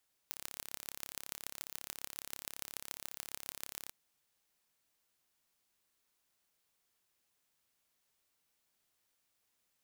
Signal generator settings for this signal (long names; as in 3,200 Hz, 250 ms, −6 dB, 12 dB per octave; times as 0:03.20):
impulse train 34.6 per second, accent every 5, −12 dBFS 3.59 s